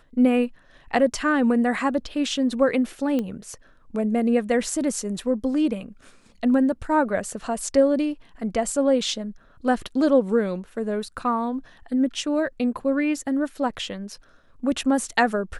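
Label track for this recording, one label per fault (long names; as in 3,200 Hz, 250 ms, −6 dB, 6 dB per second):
3.190000	3.190000	click −15 dBFS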